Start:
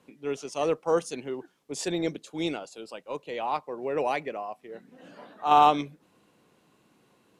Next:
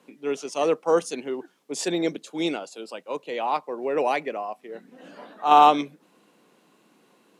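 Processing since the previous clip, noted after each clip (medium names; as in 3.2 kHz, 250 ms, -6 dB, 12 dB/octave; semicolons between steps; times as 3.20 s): high-pass 180 Hz 24 dB/octave; trim +4 dB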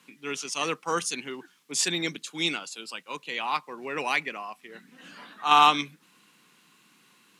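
FFT filter 130 Hz 0 dB, 620 Hz -16 dB, 1.1 kHz -1 dB, 2.4 kHz +4 dB; trim +2 dB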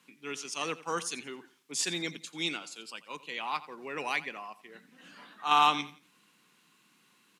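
feedback delay 87 ms, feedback 31%, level -17 dB; trim -5.5 dB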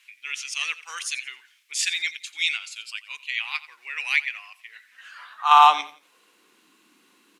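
high-pass sweep 2.2 kHz -> 300 Hz, 4.71–6.62 s; trim +4.5 dB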